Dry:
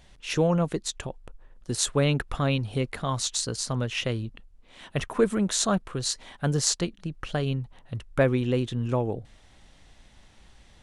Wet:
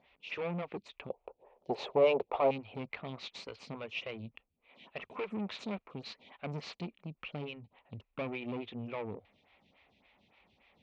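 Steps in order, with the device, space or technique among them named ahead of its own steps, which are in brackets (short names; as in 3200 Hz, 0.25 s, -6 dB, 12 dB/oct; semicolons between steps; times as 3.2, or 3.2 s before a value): vibe pedal into a guitar amplifier (photocell phaser 3.5 Hz; tube stage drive 29 dB, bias 0.45; speaker cabinet 110–3800 Hz, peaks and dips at 130 Hz -7 dB, 330 Hz -5 dB, 1600 Hz -9 dB, 2400 Hz +10 dB); 1.1–2.51 band shelf 590 Hz +15 dB; gain -3 dB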